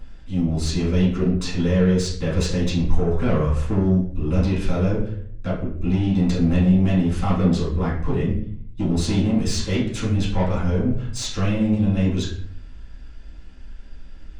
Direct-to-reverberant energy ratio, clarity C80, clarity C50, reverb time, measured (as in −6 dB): −9.0 dB, 9.0 dB, 5.0 dB, 0.55 s